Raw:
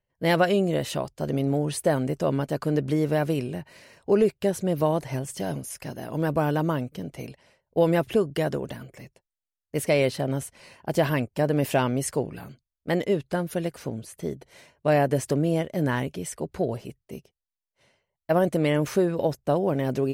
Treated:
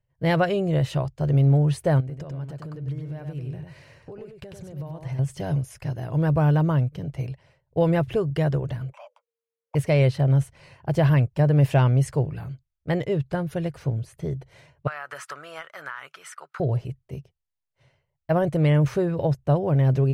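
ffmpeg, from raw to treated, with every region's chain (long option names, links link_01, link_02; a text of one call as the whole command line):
ffmpeg -i in.wav -filter_complex "[0:a]asettb=1/sr,asplit=3[link_01][link_02][link_03];[link_01]atrim=end=2.004[link_04];[link_02]atrim=start=2:end=5.19,asetpts=PTS-STARTPTS,afade=type=in:duration=0.004:curve=qsin,afade=type=out:start_time=3.186:duration=0.004:curve=qsin,acompressor=threshold=-36dB:ratio=10:attack=3.2:release=140:knee=1:detection=peak,aecho=1:1:96:0.562,atrim=end_sample=140679[link_05];[link_03]atrim=start=5.186[link_06];[link_04][link_05]acrossfade=duration=0.004:curve1=hsin:curve2=qsin[link_07];[link_07][link_06]acrossfade=duration=0.004:curve1=qsin:curve2=hsin,asettb=1/sr,asplit=3[link_08][link_09][link_10];[link_08]atrim=end=8.924[link_11];[link_09]atrim=start=8.92:end=9.75,asetpts=PTS-STARTPTS,afade=type=in:duration=0.004:curve=qsin,afade=type=out:start_time=0.826:duration=0.004:curve=qsin,lowpass=frequency=3100:poles=1,afreqshift=460[link_12];[link_10]atrim=start=9.746[link_13];[link_11][link_12]acrossfade=duration=0.004:curve1=hsin:curve2=qsin[link_14];[link_14][link_13]acrossfade=duration=0.004:curve1=qsin:curve2=hsin,asettb=1/sr,asplit=3[link_15][link_16][link_17];[link_15]atrim=end=14.874[link_18];[link_16]atrim=start=14.87:end=16.6,asetpts=PTS-STARTPTS,afade=type=in:duration=0.004:curve=qsin,afade=type=out:start_time=1.726:duration=0.004:curve=qsin,highpass=frequency=1300:width_type=q:width=8.2,acompressor=threshold=-28dB:ratio=12:attack=3.2:release=140:knee=1:detection=peak[link_19];[link_17]atrim=start=16.596[link_20];[link_18][link_19]acrossfade=duration=0.004:curve1=hsin:curve2=qsin[link_21];[link_21][link_20]acrossfade=duration=0.004:curve1=qsin:curve2=hsin,lowpass=frequency=3000:poles=1,lowshelf=frequency=170:width_type=q:width=3:gain=7" out.wav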